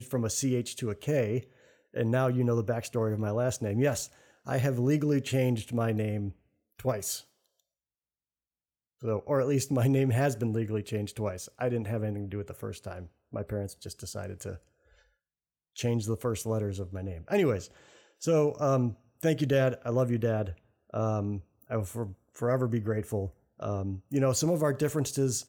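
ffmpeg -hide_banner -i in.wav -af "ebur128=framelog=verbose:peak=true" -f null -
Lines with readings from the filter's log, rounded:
Integrated loudness:
  I:         -30.4 LUFS
  Threshold: -40.8 LUFS
Loudness range:
  LRA:         7.1 LU
  Threshold: -51.3 LUFS
  LRA low:   -36.2 LUFS
  LRA high:  -29.1 LUFS
True peak:
  Peak:      -14.8 dBFS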